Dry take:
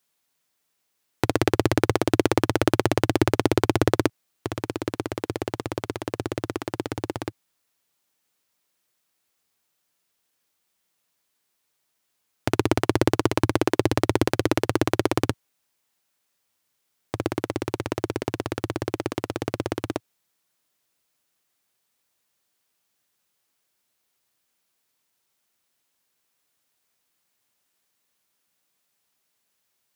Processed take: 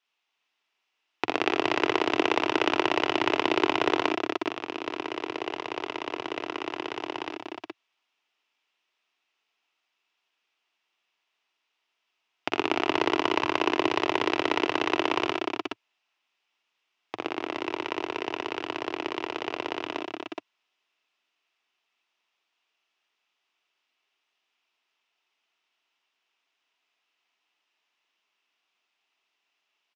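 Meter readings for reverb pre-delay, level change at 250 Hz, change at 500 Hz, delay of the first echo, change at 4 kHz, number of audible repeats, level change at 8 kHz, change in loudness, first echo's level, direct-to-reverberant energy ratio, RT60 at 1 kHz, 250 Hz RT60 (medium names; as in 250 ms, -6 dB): no reverb, -6.0 dB, -4.0 dB, 46 ms, +3.0 dB, 4, -11.0 dB, -2.5 dB, -8.5 dB, no reverb, no reverb, no reverb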